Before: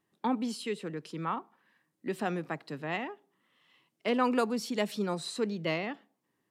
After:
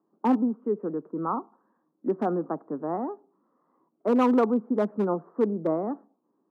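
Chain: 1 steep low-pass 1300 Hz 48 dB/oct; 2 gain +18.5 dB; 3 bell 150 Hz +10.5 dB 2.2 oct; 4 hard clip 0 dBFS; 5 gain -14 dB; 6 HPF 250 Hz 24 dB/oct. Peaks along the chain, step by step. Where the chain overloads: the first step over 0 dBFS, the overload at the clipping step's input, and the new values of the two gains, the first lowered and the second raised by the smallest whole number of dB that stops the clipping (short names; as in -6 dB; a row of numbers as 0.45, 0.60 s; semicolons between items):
-15.5, +3.0, +5.5, 0.0, -14.0, -12.0 dBFS; step 2, 5.5 dB; step 2 +12.5 dB, step 5 -8 dB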